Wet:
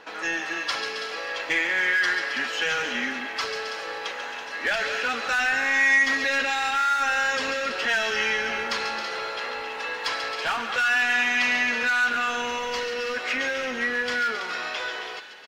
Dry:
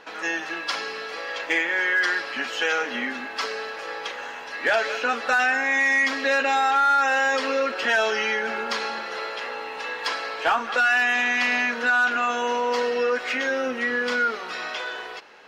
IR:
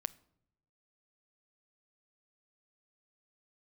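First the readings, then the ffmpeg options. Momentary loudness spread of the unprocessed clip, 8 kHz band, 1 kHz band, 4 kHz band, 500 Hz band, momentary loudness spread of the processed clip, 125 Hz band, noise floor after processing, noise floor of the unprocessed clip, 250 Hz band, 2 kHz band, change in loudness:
12 LU, +2.0 dB, -4.0 dB, +1.5 dB, -5.5 dB, 10 LU, n/a, -35 dBFS, -36 dBFS, -3.0 dB, -0.5 dB, -1.0 dB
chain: -filter_complex "[0:a]acrossover=split=1500[a][b];[a]asoftclip=type=hard:threshold=-30dB[c];[b]aecho=1:1:140|269|329:0.422|0.335|0.335[d];[c][d]amix=inputs=2:normalize=0"

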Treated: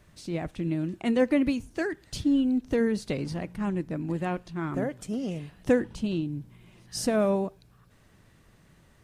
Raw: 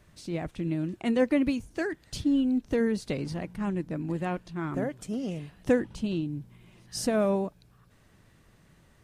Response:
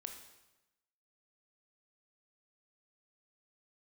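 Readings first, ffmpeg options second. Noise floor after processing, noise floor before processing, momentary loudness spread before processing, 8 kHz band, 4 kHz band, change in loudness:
-59 dBFS, -61 dBFS, 10 LU, +1.0 dB, +1.0 dB, +1.0 dB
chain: -filter_complex "[0:a]asplit=2[a][b];[1:a]atrim=start_sample=2205,afade=t=out:st=0.17:d=0.01,atrim=end_sample=7938[c];[b][c]afir=irnorm=-1:irlink=0,volume=-13dB[d];[a][d]amix=inputs=2:normalize=0"

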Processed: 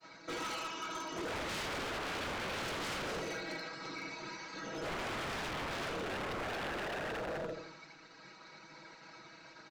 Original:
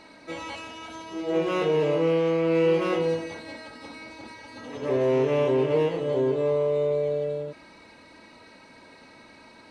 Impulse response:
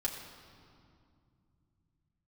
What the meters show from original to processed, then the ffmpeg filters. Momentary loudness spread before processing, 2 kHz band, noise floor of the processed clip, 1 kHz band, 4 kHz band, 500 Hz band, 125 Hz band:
18 LU, -1.5 dB, -56 dBFS, -5.0 dB, -1.0 dB, -19.0 dB, -15.0 dB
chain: -filter_complex "[0:a]highpass=140,equalizer=f=1.4k:w=6.6:g=14,afftfilt=real='hypot(re,im)*cos(2*PI*random(0))':imag='hypot(re,im)*sin(2*PI*random(1))':win_size=512:overlap=0.75,bass=f=250:g=1,treble=f=4k:g=9,acontrast=79,aresample=16000,asoftclip=type=tanh:threshold=-20.5dB,aresample=44100,bandreject=f=60:t=h:w=6,bandreject=f=120:t=h:w=6,bandreject=f=180:t=h:w=6,bandreject=f=240:t=h:w=6,bandreject=f=300:t=h:w=6,aecho=1:1:6.2:0.95,asplit=2[a][b];[b]adelay=82,lowpass=f=2.9k:p=1,volume=-7dB,asplit=2[c][d];[d]adelay=82,lowpass=f=2.9k:p=1,volume=0.42,asplit=2[e][f];[f]adelay=82,lowpass=f=2.9k:p=1,volume=0.42,asplit=2[g][h];[h]adelay=82,lowpass=f=2.9k:p=1,volume=0.42,asplit=2[i][j];[j]adelay=82,lowpass=f=2.9k:p=1,volume=0.42[k];[a][c][e][g][i][k]amix=inputs=6:normalize=0,aeval=exprs='0.0501*(abs(mod(val(0)/0.0501+3,4)-2)-1)':c=same,agate=range=-33dB:threshold=-40dB:ratio=3:detection=peak,volume=-8dB"

